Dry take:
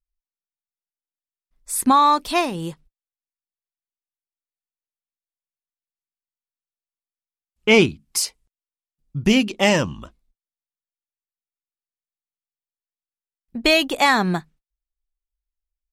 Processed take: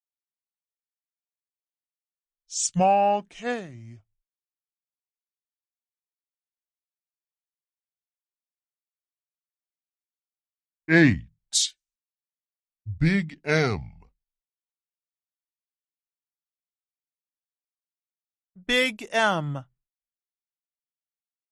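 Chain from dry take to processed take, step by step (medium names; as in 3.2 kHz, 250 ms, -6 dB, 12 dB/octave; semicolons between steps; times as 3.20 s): gliding tape speed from 67% -> 81%; Chebyshev shaper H 2 -28 dB, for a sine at -3 dBFS; three bands expanded up and down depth 100%; trim -8 dB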